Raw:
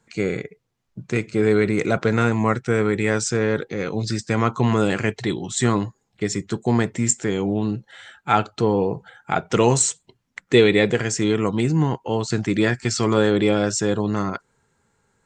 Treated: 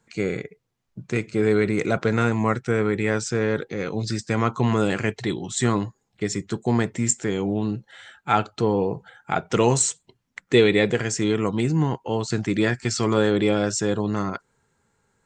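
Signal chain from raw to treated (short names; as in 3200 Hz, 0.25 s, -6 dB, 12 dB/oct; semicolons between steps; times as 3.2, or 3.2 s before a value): 2.71–3.37 high shelf 7600 Hz -9 dB; gain -2 dB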